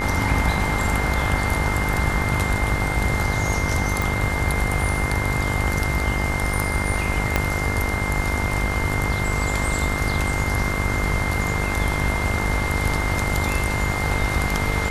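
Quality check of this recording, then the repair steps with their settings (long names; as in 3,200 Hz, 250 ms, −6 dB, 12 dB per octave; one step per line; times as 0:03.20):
mains buzz 50 Hz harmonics 37 −26 dBFS
whistle 2,100 Hz −27 dBFS
0:04.02: click
0:07.36: click −4 dBFS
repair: click removal
notch filter 2,100 Hz, Q 30
hum removal 50 Hz, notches 37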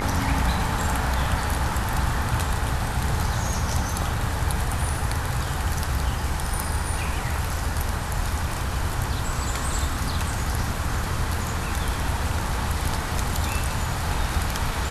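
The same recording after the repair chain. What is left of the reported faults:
0:07.36: click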